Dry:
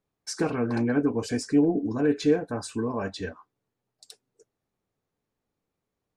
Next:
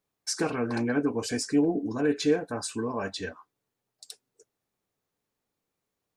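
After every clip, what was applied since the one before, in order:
spectral tilt +1.5 dB per octave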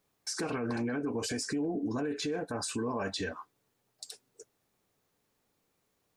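downward compressor 2 to 1, threshold −36 dBFS, peak gain reduction 10 dB
brickwall limiter −33 dBFS, peak gain reduction 10 dB
level +7 dB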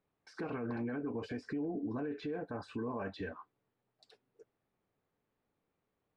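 high-frequency loss of the air 390 metres
level −4 dB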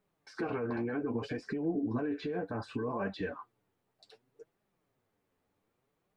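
flanger 0.65 Hz, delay 4.7 ms, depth 7.1 ms, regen +31%
level +8 dB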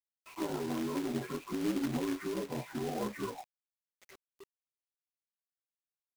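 partials spread apart or drawn together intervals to 76%
log-companded quantiser 4 bits

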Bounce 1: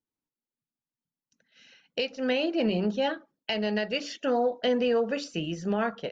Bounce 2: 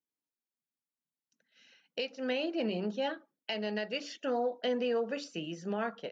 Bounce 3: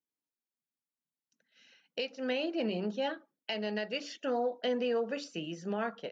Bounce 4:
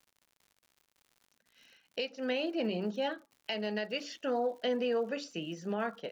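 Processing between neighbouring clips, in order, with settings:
high-pass filter 180 Hz 12 dB per octave; level −6 dB
no processing that can be heard
surface crackle 120 per second −51 dBFS

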